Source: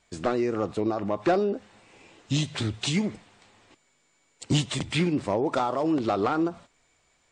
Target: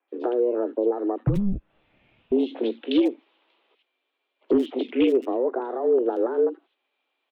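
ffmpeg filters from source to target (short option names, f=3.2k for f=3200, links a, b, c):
-filter_complex "[0:a]afwtdn=0.0282,acrossover=split=360[a][b];[b]acompressor=threshold=-41dB:ratio=20[c];[a][c]amix=inputs=2:normalize=0,highpass=f=160:t=q:w=0.5412,highpass=f=160:t=q:w=1.307,lowpass=f=3.4k:t=q:w=0.5176,lowpass=f=3.4k:t=q:w=0.7071,lowpass=f=3.4k:t=q:w=1.932,afreqshift=120,asoftclip=type=hard:threshold=-20.5dB,asettb=1/sr,asplit=3[d][e][f];[d]atrim=end=1.274[g];[e]atrim=start=1.27:end=2.32,asetpts=PTS-STARTPTS,afade=t=in:d=0.004:c=qsin,afade=t=out:st=1.046:d=0.004:c=qsin,afreqshift=-330[h];[f]atrim=start=2.316[i];[g][h]acrossfade=d=0.004:c1=hsin:c2=qsin[j];[j][i]acrossfade=d=0.004:c1=qsin:c2=hsin,aexciter=amount=2.2:drive=4.1:freq=2.6k,acrossover=split=2000[k][l];[l]adelay=80[m];[k][m]amix=inputs=2:normalize=0,volume=8dB"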